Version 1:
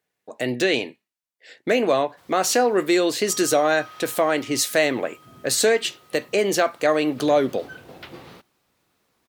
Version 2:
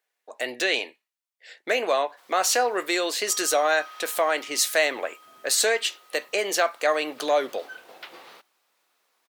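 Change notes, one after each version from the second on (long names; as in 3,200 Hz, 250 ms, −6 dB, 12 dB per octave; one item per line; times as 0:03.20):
master: add high-pass filter 620 Hz 12 dB per octave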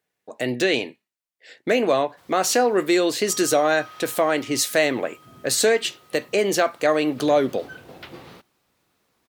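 master: remove high-pass filter 620 Hz 12 dB per octave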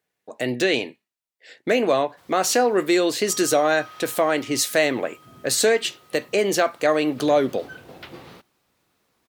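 nothing changed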